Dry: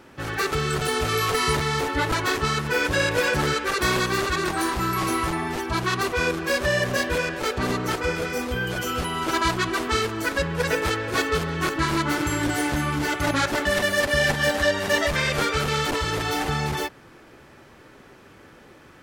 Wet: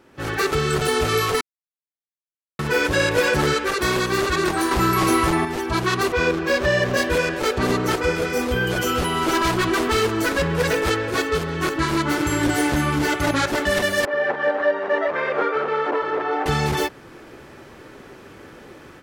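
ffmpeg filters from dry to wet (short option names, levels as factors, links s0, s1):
-filter_complex "[0:a]asettb=1/sr,asplit=3[s0][s1][s2];[s0]atrim=end=6.124[s3];[s1]atrim=start=6.12:end=6.97,asetpts=PTS-STARTPTS,afade=t=in:d=0.004:c=qsin,afade=t=out:st=0.846:d=0.004:c=qsin,equalizer=f=11000:w=0.79:g=-11[s4];[s2]atrim=start=6.966[s5];[s3][s4]acrossfade=d=0.004:c1=hsin:c2=qsin[s6];[s6][s5]acrossfade=d=0.004:c1=qsin:c2=hsin,asettb=1/sr,asplit=3[s7][s8][s9];[s7]atrim=end=8.964[s10];[s8]atrim=start=8.96:end=10.87,asetpts=PTS-STARTPTS,afade=t=in:d=0.004:c=qsin,afade=t=out:st=1.906:d=0.004:c=qsin,asoftclip=type=hard:threshold=0.0794[s11];[s9]atrim=start=10.866[s12];[s10][s11]acrossfade=d=0.004:c1=hsin:c2=qsin[s13];[s13][s12]acrossfade=d=0.004:c1=qsin:c2=hsin,asettb=1/sr,asplit=3[s14][s15][s16];[s14]atrim=end=14.054[s17];[s15]atrim=start=14.05:end=16.46,asetpts=PTS-STARTPTS,afade=t=in:d=0.004:c=qsin,afade=t=out:st=2.406:d=0.004:c=qsin,asuperpass=centerf=770:order=4:qfactor=0.63[s18];[s16]atrim=start=16.456[s19];[s17][s18]acrossfade=d=0.004:c1=hsin:c2=qsin[s20];[s20][s19]acrossfade=d=0.004:c1=qsin:c2=hsin,asplit=5[s21][s22][s23][s24][s25];[s21]atrim=end=1.41,asetpts=PTS-STARTPTS,afade=t=out:st=1.406:d=0.004:c=hsin[s26];[s22]atrim=start=1.41:end=2.59,asetpts=PTS-STARTPTS,volume=0[s27];[s23]atrim=start=2.59:end=4.712,asetpts=PTS-STARTPTS,afade=t=in:d=0.004:c=hsin[s28];[s24]atrim=start=4.708:end=5.452,asetpts=PTS-STARTPTS,volume=2[s29];[s25]atrim=start=5.448[s30];[s26][s27][s28]concat=n=3:v=0:a=1[s31];[s31][s29]acrossfade=d=0.004:c1=hsin:c2=hsin[s32];[s32][s30]acrossfade=d=0.004:c1=hsin:c2=hsin,equalizer=f=390:t=o:w=1:g=3.5,dynaudnorm=f=130:g=3:m=3.76,volume=0.473"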